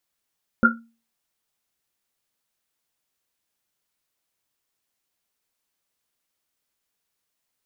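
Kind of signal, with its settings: Risset drum, pitch 230 Hz, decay 0.36 s, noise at 1400 Hz, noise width 100 Hz, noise 70%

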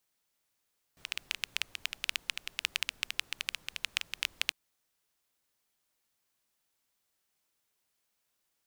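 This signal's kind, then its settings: rain from filtered ticks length 3.55 s, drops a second 11, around 2700 Hz, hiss -23 dB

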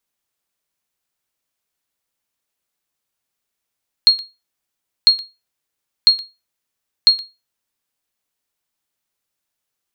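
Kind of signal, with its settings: sonar ping 4270 Hz, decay 0.24 s, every 1.00 s, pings 4, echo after 0.12 s, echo -19 dB -1.5 dBFS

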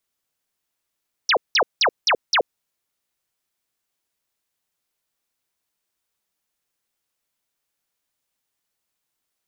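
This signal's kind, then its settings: burst of laser zaps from 6200 Hz, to 390 Hz, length 0.08 s sine, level -14 dB, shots 5, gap 0.18 s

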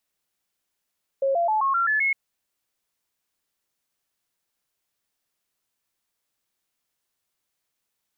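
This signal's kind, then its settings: stepped sine 544 Hz up, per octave 3, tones 7, 0.13 s, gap 0.00 s -19 dBFS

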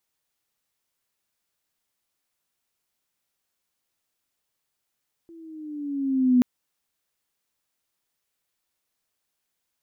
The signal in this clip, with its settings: gliding synth tone sine, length 1.13 s, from 337 Hz, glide -5.5 st, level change +30.5 dB, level -13 dB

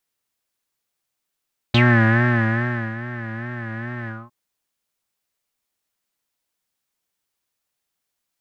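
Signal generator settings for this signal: synth patch with vibrato A#3, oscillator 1 triangle, oscillator 2 level -16 dB, sub -0.5 dB, noise -10.5 dB, filter lowpass, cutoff 1000 Hz, Q 8.8, filter envelope 2 oct, filter decay 0.08 s, filter sustain 40%, attack 6.2 ms, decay 1.20 s, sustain -16.5 dB, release 0.22 s, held 2.34 s, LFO 2.4 Hz, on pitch 84 cents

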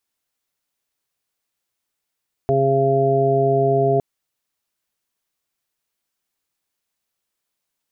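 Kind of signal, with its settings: steady additive tone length 1.51 s, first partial 136 Hz, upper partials -7/3.5/-11.5/2.5 dB, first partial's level -21 dB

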